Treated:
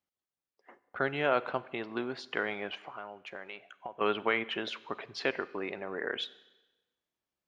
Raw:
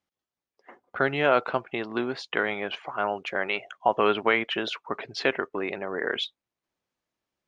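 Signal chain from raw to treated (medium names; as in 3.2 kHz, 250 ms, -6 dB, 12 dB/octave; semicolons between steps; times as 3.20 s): 2.86–4.01 s: compression 4:1, threshold -35 dBFS, peak gain reduction 16 dB; Schroeder reverb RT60 1.1 s, combs from 31 ms, DRR 17.5 dB; trim -6.5 dB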